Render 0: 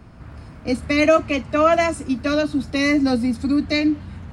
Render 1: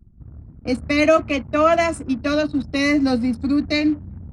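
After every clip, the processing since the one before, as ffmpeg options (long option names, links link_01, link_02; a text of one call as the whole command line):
ffmpeg -i in.wav -af "anlmdn=3.98" out.wav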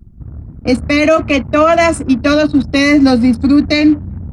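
ffmpeg -i in.wav -af "alimiter=level_in=11.5dB:limit=-1dB:release=50:level=0:latency=1,volume=-1dB" out.wav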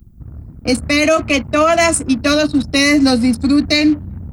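ffmpeg -i in.wav -af "aemphasis=mode=production:type=75kf,volume=-3.5dB" out.wav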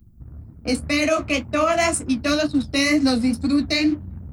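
ffmpeg -i in.wav -af "flanger=delay=8.7:depth=7.3:regen=-39:speed=2:shape=triangular,volume=-3dB" out.wav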